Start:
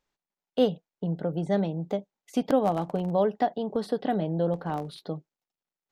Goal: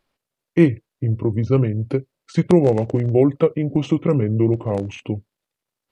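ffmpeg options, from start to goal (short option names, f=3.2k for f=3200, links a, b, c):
-af "asetrate=29433,aresample=44100,atempo=1.49831,volume=9dB"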